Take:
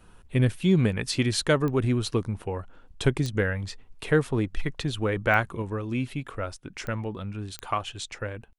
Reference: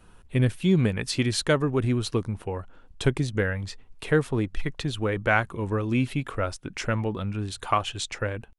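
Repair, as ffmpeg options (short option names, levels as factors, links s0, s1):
-af "adeclick=t=4,asetnsamples=n=441:p=0,asendcmd='5.62 volume volume 4.5dB',volume=1"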